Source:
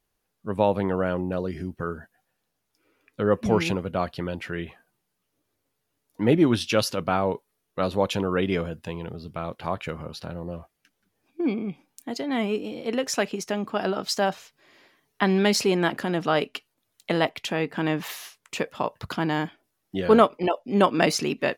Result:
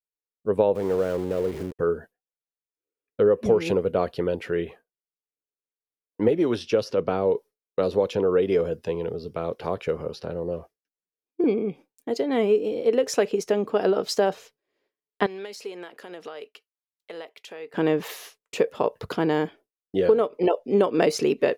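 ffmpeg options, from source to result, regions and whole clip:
-filter_complex "[0:a]asettb=1/sr,asplit=3[s0][s1][s2];[s0]atrim=end=0.754[s3];[s1]atrim=start=0.75:end=1.79,asetpts=PTS-STARTPTS,afade=t=in:d=0.004:c=qsin,afade=t=out:st=1.036:d=0.004:c=qsin,lowshelf=f=110:g=3,acompressor=threshold=0.0398:ratio=2:attack=3.2:release=140:knee=1:detection=peak,aeval=exprs='val(0)*gte(abs(val(0)),0.015)':c=same[s4];[s2]atrim=start=1.786[s5];[s3][s4]acrossfade=d=0.004:c1=hsin:c2=qsin[s6];[s6][s5]acrossfade=d=0.004:c1=qsin:c2=hsin,asettb=1/sr,asplit=3[s7][s8][s9];[s7]atrim=end=6.284[s10];[s8]atrim=start=6.28:end=11.44,asetpts=PTS-STARTPTS,afade=t=in:d=0.004:c=qsin,afade=t=out:st=5.156:d=0.004:c=qsin,acrossover=split=440|1200|2800|6600[s11][s12][s13][s14][s15];[s11]acompressor=threshold=0.0447:ratio=3[s16];[s12]acompressor=threshold=0.0282:ratio=3[s17];[s13]acompressor=threshold=0.0112:ratio=3[s18];[s14]acompressor=threshold=0.00501:ratio=3[s19];[s15]acompressor=threshold=0.001:ratio=3[s20];[s16][s17][s18][s19][s20]amix=inputs=5:normalize=0,equalizer=f=5400:w=3:g=6.5[s21];[s9]atrim=start=11.436[s22];[s10][s21]acrossfade=d=0.004:c1=hsin:c2=qsin[s23];[s23][s22]acrossfade=d=0.004:c1=qsin:c2=hsin,asettb=1/sr,asplit=3[s24][s25][s26];[s24]atrim=end=15.264[s27];[s25]atrim=start=15.26:end=17.74,asetpts=PTS-STARTPTS,afade=t=in:d=0.004:c=qsin,afade=t=out:st=2.476:d=0.004:c=qsin,highpass=f=1200:p=1,acompressor=threshold=0.0126:ratio=5:attack=3.2:release=140:knee=1:detection=peak[s28];[s26]atrim=start=17.736[s29];[s27][s28]acrossfade=d=0.004:c1=hsin:c2=qsin[s30];[s30][s29]acrossfade=d=0.004:c1=qsin:c2=hsin,agate=range=0.0224:threshold=0.00794:ratio=3:detection=peak,equalizer=f=450:t=o:w=0.72:g=14.5,acompressor=threshold=0.224:ratio=16,volume=0.794"

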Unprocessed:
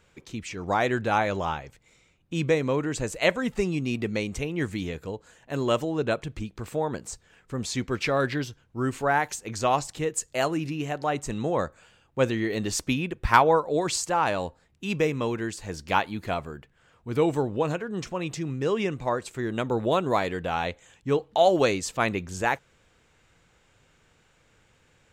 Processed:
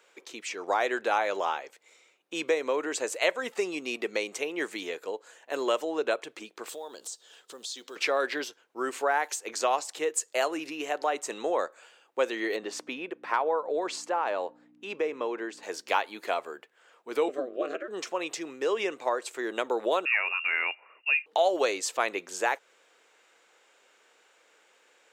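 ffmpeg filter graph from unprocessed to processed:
-filter_complex "[0:a]asettb=1/sr,asplit=3[s0][s1][s2];[s0]atrim=end=6.694[s3];[s1]atrim=start=6.69:end=7.96,asetpts=PTS-STARTPTS,afade=t=in:d=0.004:c=qsin,afade=t=out:st=1.266:d=0.004:c=qsin,highshelf=f=2800:t=q:w=3:g=6.5,acompressor=threshold=0.0112:ratio=4:attack=3.2:release=140:knee=1:detection=peak,acrusher=bits=8:mode=log:mix=0:aa=0.000001[s4];[s2]atrim=start=7.956[s5];[s3][s4]acrossfade=d=0.004:c1=hsin:c2=qsin[s6];[s6][s5]acrossfade=d=0.004:c1=qsin:c2=hsin,asettb=1/sr,asplit=3[s7][s8][s9];[s7]atrim=end=12.564[s10];[s8]atrim=start=12.56:end=15.63,asetpts=PTS-STARTPTS,afade=t=in:d=0.004:c=qsin,afade=t=out:st=3.066:d=0.004:c=qsin,lowpass=f=1600:p=1,acompressor=threshold=0.0398:ratio=1.5:attack=3.2:release=140:knee=1:detection=peak,aeval=exprs='val(0)+0.0126*(sin(2*PI*60*n/s)+sin(2*PI*2*60*n/s)/2+sin(2*PI*3*60*n/s)/3+sin(2*PI*4*60*n/s)/4+sin(2*PI*5*60*n/s)/5)':c=same[s11];[s9]atrim=start=15.626[s12];[s10][s11]acrossfade=d=0.004:c1=hsin:c2=qsin[s13];[s13][s12]acrossfade=d=0.004:c1=qsin:c2=hsin,asettb=1/sr,asplit=3[s14][s15][s16];[s14]atrim=end=17.284[s17];[s15]atrim=start=17.28:end=17.88,asetpts=PTS-STARTPTS,afade=t=in:d=0.004:c=qsin,afade=t=out:st=0.596:d=0.004:c=qsin,aemphasis=mode=reproduction:type=75kf,aeval=exprs='val(0)*sin(2*PI*130*n/s)':c=same,asuperstop=centerf=900:order=4:qfactor=2.2[s18];[s16]atrim=start=17.876[s19];[s17][s18]acrossfade=d=0.004:c1=hsin:c2=qsin[s20];[s20][s19]acrossfade=d=0.004:c1=qsin:c2=hsin,asettb=1/sr,asplit=3[s21][s22][s23];[s21]atrim=end=20.054[s24];[s22]atrim=start=20.05:end=21.26,asetpts=PTS-STARTPTS,afade=t=in:d=0.004:c=qsin,afade=t=out:st=1.206:d=0.004:c=qsin,highpass=49,lowpass=f=2500:t=q:w=0.5098,lowpass=f=2500:t=q:w=0.6013,lowpass=f=2500:t=q:w=0.9,lowpass=f=2500:t=q:w=2.563,afreqshift=-2900[s25];[s23]atrim=start=21.256[s26];[s24][s25]acrossfade=d=0.004:c1=hsin:c2=qsin[s27];[s27][s26]acrossfade=d=0.004:c1=qsin:c2=hsin,highpass=f=380:w=0.5412,highpass=f=380:w=1.3066,acompressor=threshold=0.0447:ratio=2,volume=1.26"

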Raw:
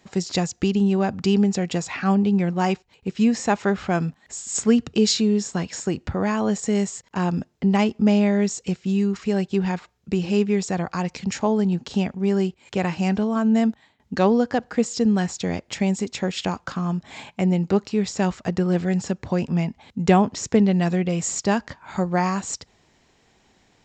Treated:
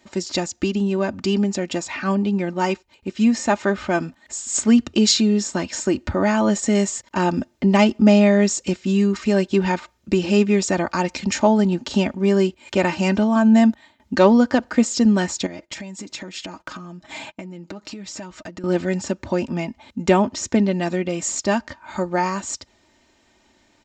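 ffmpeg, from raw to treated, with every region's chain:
-filter_complex "[0:a]asettb=1/sr,asplit=3[s0][s1][s2];[s0]atrim=end=15.464[s3];[s1]atrim=start=15.46:end=18.64,asetpts=PTS-STARTPTS,afade=t=in:d=0.004:c=qsin,afade=t=out:st=3.176:d=0.004:c=qsin,agate=range=0.126:threshold=0.00501:ratio=16:release=100:detection=peak,aecho=1:1:6.3:0.52,atrim=end_sample=140238,acompressor=threshold=0.0224:ratio=8:attack=3.2:release=140:knee=1:detection=peak[s4];[s2]atrim=start=18.636[s5];[s3][s4]acrossfade=d=0.004:c1=hsin:c2=qsin[s6];[s6][s5]acrossfade=d=0.004:c1=qsin:c2=hsin,lowshelf=f=60:g=-6,aecho=1:1:3.3:0.65,dynaudnorm=f=630:g=17:m=3.76"

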